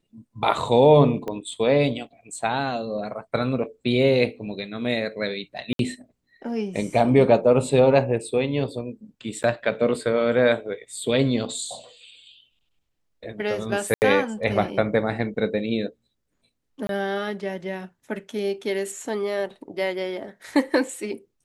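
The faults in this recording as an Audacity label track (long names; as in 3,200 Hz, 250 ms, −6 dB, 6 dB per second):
1.280000	1.280000	click −18 dBFS
5.730000	5.790000	drop-out 62 ms
9.430000	9.440000	drop-out 8.8 ms
13.940000	14.020000	drop-out 79 ms
16.870000	16.890000	drop-out 22 ms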